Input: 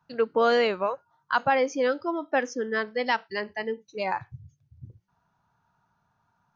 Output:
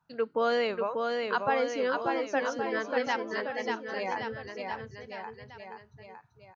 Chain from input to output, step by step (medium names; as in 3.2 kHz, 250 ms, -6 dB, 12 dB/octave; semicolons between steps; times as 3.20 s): bouncing-ball echo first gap 590 ms, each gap 0.9×, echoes 5; trim -5.5 dB